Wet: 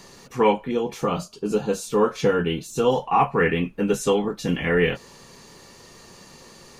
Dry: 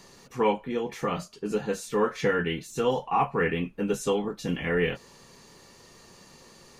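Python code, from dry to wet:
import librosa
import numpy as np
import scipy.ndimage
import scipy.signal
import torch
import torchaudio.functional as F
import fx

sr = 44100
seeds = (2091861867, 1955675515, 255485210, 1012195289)

y = fx.peak_eq(x, sr, hz=1900.0, db=-12.5, octaves=0.47, at=(0.71, 2.93))
y = y * librosa.db_to_amplitude(5.5)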